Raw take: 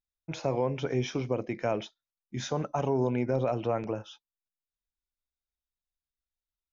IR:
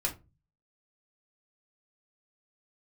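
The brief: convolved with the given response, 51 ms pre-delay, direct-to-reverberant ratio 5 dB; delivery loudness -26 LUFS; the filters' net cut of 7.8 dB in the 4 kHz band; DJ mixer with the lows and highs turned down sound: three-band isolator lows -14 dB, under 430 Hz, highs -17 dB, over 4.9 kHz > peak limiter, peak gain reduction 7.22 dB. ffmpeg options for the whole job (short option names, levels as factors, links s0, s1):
-filter_complex "[0:a]equalizer=f=4000:t=o:g=-8,asplit=2[s0][s1];[1:a]atrim=start_sample=2205,adelay=51[s2];[s1][s2]afir=irnorm=-1:irlink=0,volume=0.316[s3];[s0][s3]amix=inputs=2:normalize=0,acrossover=split=430 4900:gain=0.2 1 0.141[s4][s5][s6];[s4][s5][s6]amix=inputs=3:normalize=0,volume=3.55,alimiter=limit=0.188:level=0:latency=1"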